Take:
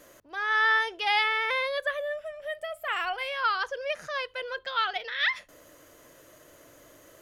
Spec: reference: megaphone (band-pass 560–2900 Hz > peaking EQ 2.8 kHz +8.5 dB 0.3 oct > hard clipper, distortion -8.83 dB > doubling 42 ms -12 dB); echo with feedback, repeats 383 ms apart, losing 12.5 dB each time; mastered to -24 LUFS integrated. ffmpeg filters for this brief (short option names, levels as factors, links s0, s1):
-filter_complex "[0:a]highpass=560,lowpass=2900,equalizer=f=2800:t=o:w=0.3:g=8.5,aecho=1:1:383|766|1149:0.237|0.0569|0.0137,asoftclip=type=hard:threshold=0.0562,asplit=2[s0][s1];[s1]adelay=42,volume=0.251[s2];[s0][s2]amix=inputs=2:normalize=0,volume=2"